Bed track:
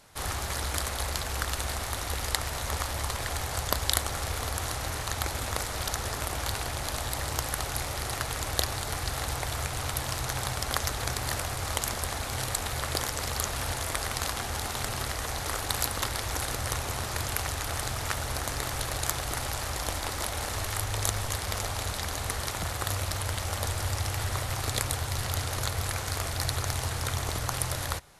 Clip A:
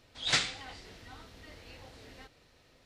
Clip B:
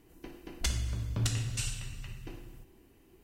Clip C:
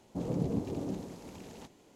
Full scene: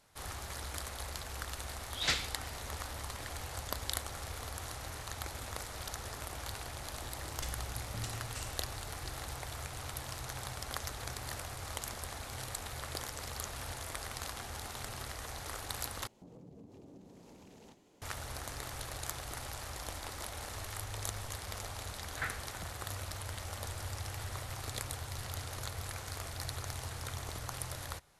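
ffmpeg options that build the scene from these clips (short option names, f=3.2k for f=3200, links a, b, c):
-filter_complex "[1:a]asplit=2[a][b];[0:a]volume=-10.5dB[c];[3:a]acompressor=threshold=-47dB:ratio=6:attack=3.2:release=140:knee=1:detection=peak[d];[b]lowpass=f=1.6k:t=q:w=3.2[e];[c]asplit=2[f][g];[f]atrim=end=16.074[h];[d]atrim=end=1.95,asetpts=PTS-STARTPTS,volume=-4.5dB[i];[g]atrim=start=18.016[j];[a]atrim=end=2.85,asetpts=PTS-STARTPTS,volume=-4dB,afade=t=in:d=0.004:c=hsin,afade=t=out:st=2.846:d=0.004:c=hsin,adelay=1750[k];[2:a]atrim=end=3.23,asetpts=PTS-STARTPTS,volume=-10.5dB,afade=t=in:d=0.004:c=hsin,afade=t=out:st=3.226:d=0.004:c=hsin,adelay=6780[l];[e]atrim=end=2.85,asetpts=PTS-STARTPTS,volume=-12dB,afade=t=in:d=0.004:c=hsin,afade=t=out:st=2.846:d=0.004:c=hsin,adelay=21890[m];[h][i]acrossfade=d=0.004:c1=hsin:c2=hsin[n];[n][j]acrossfade=d=0.004:c1=hsin:c2=hsin[o];[o][k][l][m]amix=inputs=4:normalize=0"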